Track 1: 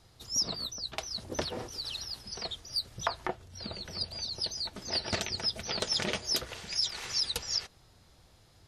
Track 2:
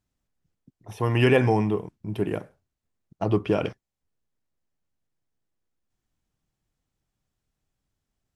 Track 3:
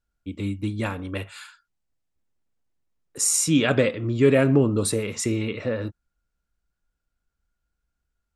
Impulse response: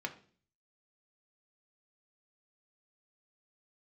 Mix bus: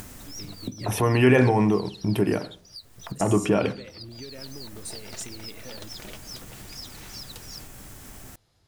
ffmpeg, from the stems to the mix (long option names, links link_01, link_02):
-filter_complex "[0:a]acompressor=threshold=-36dB:ratio=2,volume=-6dB[link_01];[1:a]acompressor=mode=upward:threshold=-23dB:ratio=2.5,equalizer=frequency=4100:width_type=o:width=1.2:gain=-6,volume=2.5dB,asplit=2[link_02][link_03];[link_03]volume=-4dB[link_04];[2:a]acompressor=threshold=-28dB:ratio=6,volume=-12.5dB[link_05];[link_02][link_05]amix=inputs=2:normalize=0,highshelf=frequency=3400:gain=10,alimiter=limit=-17dB:level=0:latency=1:release=80,volume=0dB[link_06];[3:a]atrim=start_sample=2205[link_07];[link_04][link_07]afir=irnorm=-1:irlink=0[link_08];[link_01][link_06][link_08]amix=inputs=3:normalize=0"